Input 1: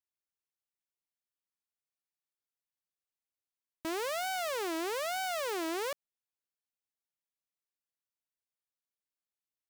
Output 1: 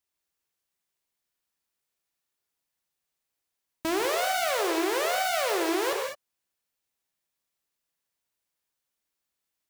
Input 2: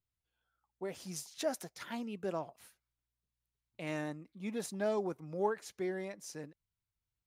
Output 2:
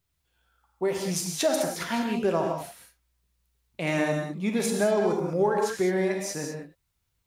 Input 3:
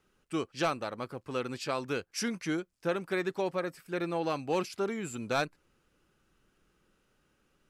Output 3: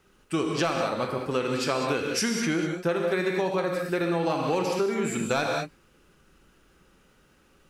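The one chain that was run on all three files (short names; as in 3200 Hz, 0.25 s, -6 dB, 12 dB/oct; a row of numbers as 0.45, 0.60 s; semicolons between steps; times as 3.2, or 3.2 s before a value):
non-linear reverb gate 0.23 s flat, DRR 1.5 dB; compressor, threshold -31 dBFS; match loudness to -27 LUFS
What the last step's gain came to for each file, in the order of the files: +8.0, +12.0, +8.5 dB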